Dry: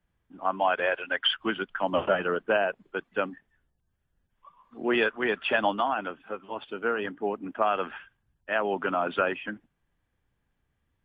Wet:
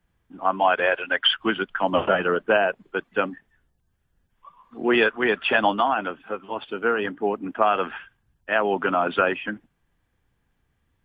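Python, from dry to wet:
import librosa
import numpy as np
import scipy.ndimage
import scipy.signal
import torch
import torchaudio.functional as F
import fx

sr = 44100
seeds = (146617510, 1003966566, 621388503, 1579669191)

y = fx.notch(x, sr, hz=590.0, q=18.0)
y = y * librosa.db_to_amplitude(5.5)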